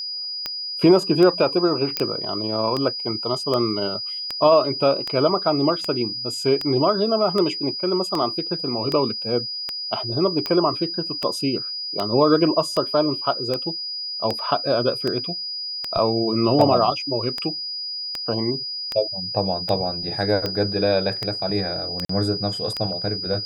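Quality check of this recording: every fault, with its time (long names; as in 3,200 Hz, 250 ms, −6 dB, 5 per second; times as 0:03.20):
scratch tick 78 rpm −11 dBFS
whistle 4,900 Hz −27 dBFS
0:01.97: click −7 dBFS
0:22.05–0:22.09: drop-out 44 ms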